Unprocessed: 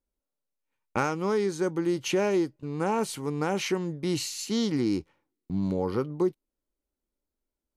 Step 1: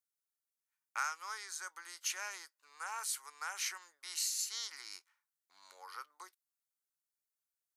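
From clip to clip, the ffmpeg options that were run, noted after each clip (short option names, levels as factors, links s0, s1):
-af "highpass=f=1400:w=0.5412,highpass=f=1400:w=1.3066,equalizer=f=2800:w=0.99:g=-13.5,volume=1.41"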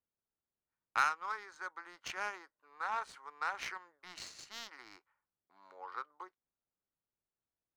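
-af "lowshelf=f=320:g=5,adynamicsmooth=sensitivity=3.5:basefreq=1100,volume=22.4,asoftclip=hard,volume=0.0447,volume=2.37"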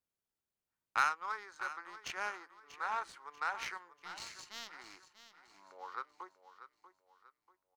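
-af "aecho=1:1:639|1278|1917|2556:0.224|0.0851|0.0323|0.0123"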